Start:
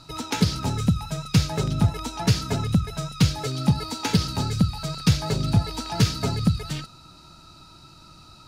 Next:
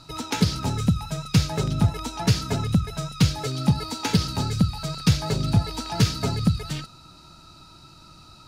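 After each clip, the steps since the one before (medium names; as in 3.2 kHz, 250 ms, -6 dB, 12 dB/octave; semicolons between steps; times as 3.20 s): no audible change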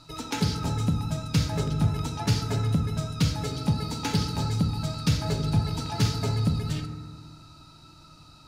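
in parallel at -8.5 dB: saturation -14 dBFS, distortion -14 dB; on the sum: FDN reverb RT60 1.6 s, low-frequency decay 1.25×, high-frequency decay 0.3×, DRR 5.5 dB; trim -7 dB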